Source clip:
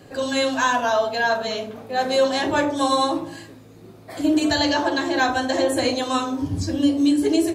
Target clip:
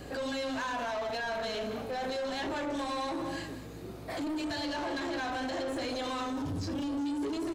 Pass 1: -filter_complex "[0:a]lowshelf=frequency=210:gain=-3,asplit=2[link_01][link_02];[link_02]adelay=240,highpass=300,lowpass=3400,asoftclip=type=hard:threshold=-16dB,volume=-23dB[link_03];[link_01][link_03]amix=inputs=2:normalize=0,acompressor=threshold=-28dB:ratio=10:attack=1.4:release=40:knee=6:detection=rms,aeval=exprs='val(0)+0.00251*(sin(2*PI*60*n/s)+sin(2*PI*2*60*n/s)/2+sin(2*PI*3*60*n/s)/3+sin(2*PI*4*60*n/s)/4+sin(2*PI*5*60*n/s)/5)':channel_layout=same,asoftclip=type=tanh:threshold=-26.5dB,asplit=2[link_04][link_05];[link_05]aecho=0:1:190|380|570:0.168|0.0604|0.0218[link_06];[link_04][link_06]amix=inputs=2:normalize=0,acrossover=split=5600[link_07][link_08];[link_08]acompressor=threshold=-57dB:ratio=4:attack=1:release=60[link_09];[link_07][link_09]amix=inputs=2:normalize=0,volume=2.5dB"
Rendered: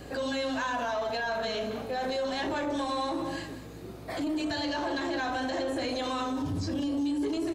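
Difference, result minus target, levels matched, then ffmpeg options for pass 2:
soft clipping: distortion −8 dB
-filter_complex "[0:a]lowshelf=frequency=210:gain=-3,asplit=2[link_01][link_02];[link_02]adelay=240,highpass=300,lowpass=3400,asoftclip=type=hard:threshold=-16dB,volume=-23dB[link_03];[link_01][link_03]amix=inputs=2:normalize=0,acompressor=threshold=-28dB:ratio=10:attack=1.4:release=40:knee=6:detection=rms,aeval=exprs='val(0)+0.00251*(sin(2*PI*60*n/s)+sin(2*PI*2*60*n/s)/2+sin(2*PI*3*60*n/s)/3+sin(2*PI*4*60*n/s)/4+sin(2*PI*5*60*n/s)/5)':channel_layout=same,asoftclip=type=tanh:threshold=-33.5dB,asplit=2[link_04][link_05];[link_05]aecho=0:1:190|380|570:0.168|0.0604|0.0218[link_06];[link_04][link_06]amix=inputs=2:normalize=0,acrossover=split=5600[link_07][link_08];[link_08]acompressor=threshold=-57dB:ratio=4:attack=1:release=60[link_09];[link_07][link_09]amix=inputs=2:normalize=0,volume=2.5dB"

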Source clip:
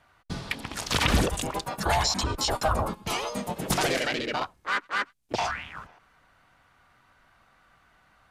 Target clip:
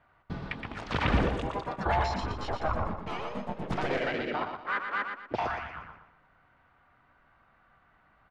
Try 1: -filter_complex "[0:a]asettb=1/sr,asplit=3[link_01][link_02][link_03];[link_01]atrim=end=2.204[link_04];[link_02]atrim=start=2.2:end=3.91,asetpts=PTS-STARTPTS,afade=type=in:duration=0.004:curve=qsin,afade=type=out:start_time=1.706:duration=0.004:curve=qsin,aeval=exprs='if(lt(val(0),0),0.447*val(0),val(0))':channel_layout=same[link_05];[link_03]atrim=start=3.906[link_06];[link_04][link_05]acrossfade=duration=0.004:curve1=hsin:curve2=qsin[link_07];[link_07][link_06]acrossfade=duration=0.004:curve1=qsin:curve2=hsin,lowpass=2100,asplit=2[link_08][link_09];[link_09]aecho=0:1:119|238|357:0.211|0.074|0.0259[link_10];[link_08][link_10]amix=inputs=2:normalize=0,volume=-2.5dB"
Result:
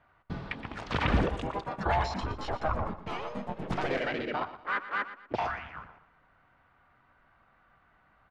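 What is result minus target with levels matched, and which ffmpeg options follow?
echo-to-direct −7 dB
-filter_complex "[0:a]asettb=1/sr,asplit=3[link_01][link_02][link_03];[link_01]atrim=end=2.204[link_04];[link_02]atrim=start=2.2:end=3.91,asetpts=PTS-STARTPTS,afade=type=in:duration=0.004:curve=qsin,afade=type=out:start_time=1.706:duration=0.004:curve=qsin,aeval=exprs='if(lt(val(0),0),0.447*val(0),val(0))':channel_layout=same[link_05];[link_03]atrim=start=3.906[link_06];[link_04][link_05]acrossfade=duration=0.004:curve1=hsin:curve2=qsin[link_07];[link_07][link_06]acrossfade=duration=0.004:curve1=qsin:curve2=hsin,lowpass=2100,asplit=2[link_08][link_09];[link_09]aecho=0:1:119|238|357|476:0.473|0.166|0.058|0.0203[link_10];[link_08][link_10]amix=inputs=2:normalize=0,volume=-2.5dB"

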